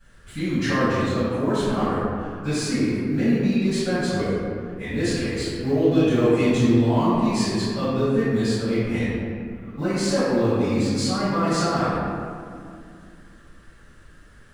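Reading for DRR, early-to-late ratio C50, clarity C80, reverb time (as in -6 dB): -18.5 dB, -4.0 dB, -1.5 dB, 2.4 s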